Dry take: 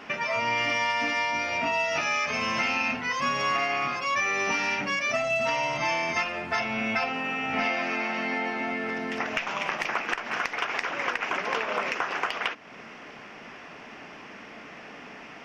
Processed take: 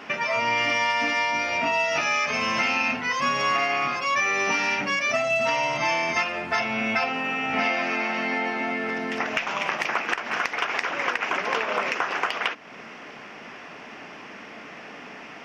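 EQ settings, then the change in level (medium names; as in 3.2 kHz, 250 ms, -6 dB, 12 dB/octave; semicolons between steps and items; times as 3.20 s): bass shelf 65 Hz -11 dB; +3.0 dB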